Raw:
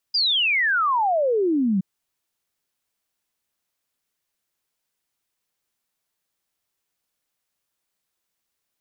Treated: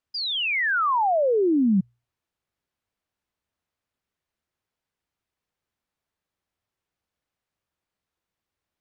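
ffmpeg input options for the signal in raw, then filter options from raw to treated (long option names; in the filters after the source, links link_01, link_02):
-f lavfi -i "aevalsrc='0.133*clip(min(t,1.67-t)/0.01,0,1)*sin(2*PI*5000*1.67/log(180/5000)*(exp(log(180/5000)*t/1.67)-1))':duration=1.67:sample_rate=44100"
-af "lowpass=frequency=1900:poles=1,equalizer=frequency=72:width=0.87:gain=9,bandreject=frequency=60:width_type=h:width=6,bandreject=frequency=120:width_type=h:width=6"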